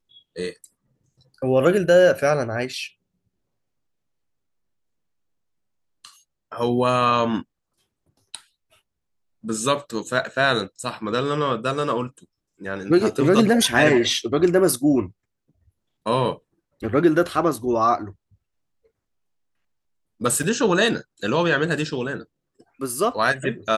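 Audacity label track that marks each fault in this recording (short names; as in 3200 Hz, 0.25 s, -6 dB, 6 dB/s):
20.430000	20.430000	gap 4.9 ms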